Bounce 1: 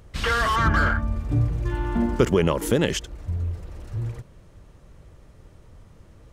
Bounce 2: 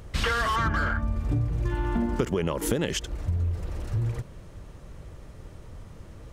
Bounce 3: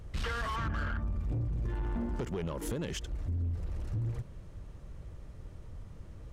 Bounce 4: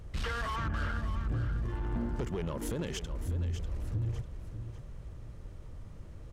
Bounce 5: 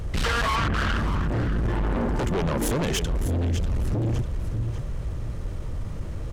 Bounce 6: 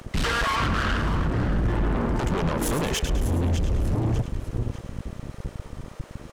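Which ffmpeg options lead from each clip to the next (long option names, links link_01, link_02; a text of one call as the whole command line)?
ffmpeg -i in.wav -af "acompressor=threshold=-28dB:ratio=6,volume=5dB" out.wav
ffmpeg -i in.wav -af "lowshelf=frequency=170:gain=7,asoftclip=type=tanh:threshold=-20.5dB,highshelf=frequency=11000:gain=-3.5,volume=-8dB" out.wav
ffmpeg -i in.wav -af "aecho=1:1:597|1194|1791:0.316|0.098|0.0304" out.wav
ffmpeg -i in.wav -af "aeval=exprs='0.0531*sin(PI/2*2.24*val(0)/0.0531)':channel_layout=same,volume=4.5dB" out.wav
ffmpeg -i in.wav -filter_complex "[0:a]acrossover=split=470[link_01][link_02];[link_01]acrusher=bits=3:mix=0:aa=0.5[link_03];[link_02]aecho=1:1:106|212|318|424:0.355|0.131|0.0486|0.018[link_04];[link_03][link_04]amix=inputs=2:normalize=0" out.wav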